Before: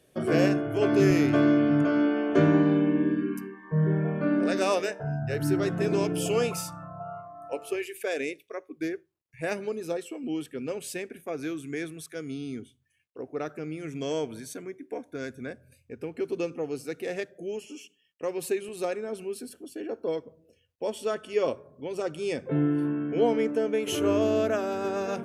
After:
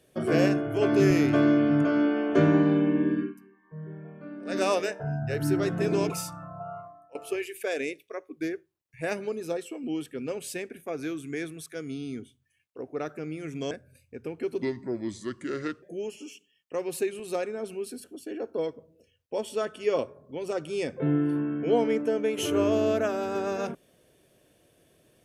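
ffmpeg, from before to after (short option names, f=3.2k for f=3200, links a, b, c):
-filter_complex "[0:a]asplit=8[a][b][c][d][e][f][g][h];[a]atrim=end=3.34,asetpts=PTS-STARTPTS,afade=t=out:st=3.21:d=0.13:silence=0.158489[i];[b]atrim=start=3.34:end=4.45,asetpts=PTS-STARTPTS,volume=-16dB[j];[c]atrim=start=4.45:end=6.102,asetpts=PTS-STARTPTS,afade=t=in:d=0.13:silence=0.158489[k];[d]atrim=start=6.498:end=7.55,asetpts=PTS-STARTPTS,afade=t=out:st=0.752:d=0.3:c=qua:silence=0.105925[l];[e]atrim=start=7.55:end=14.112,asetpts=PTS-STARTPTS,afade=t=in:d=0.004:c=hsin:silence=0.105925[m];[f]atrim=start=15.478:end=16.394[n];[g]atrim=start=16.39:end=17.32,asetpts=PTS-STARTPTS,asetrate=33957,aresample=44100[o];[h]atrim=start=17.316[p];[i][j][k]concat=n=3:v=0:a=1[q];[l][m]concat=n=2:v=0:a=1[r];[q][r]acrossfade=d=0.004:c1=hsin:c2=hsin[s];[s][n]acrossfade=d=0.004:c1=hsin:c2=hsin[t];[t][o]acrossfade=d=0.004:c1=hsin:c2=hsin[u];[u][p]acrossfade=d=0.004:c1=hsin:c2=hsin"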